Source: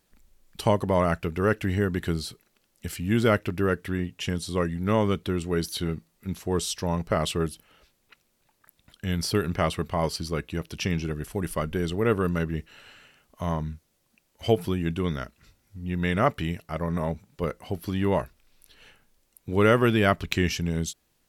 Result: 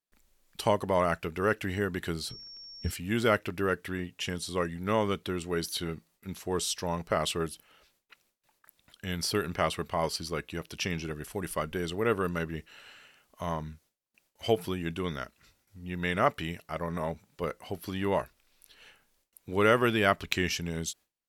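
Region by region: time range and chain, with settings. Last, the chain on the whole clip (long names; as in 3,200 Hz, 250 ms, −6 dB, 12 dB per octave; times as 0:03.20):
0:02.28–0:02.90: RIAA equalisation playback + mains-hum notches 50/100/150/200/250/300/350 Hz + steady tone 5,500 Hz −43 dBFS
whole clip: noise gate with hold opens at −56 dBFS; low-shelf EQ 300 Hz −9 dB; level −1 dB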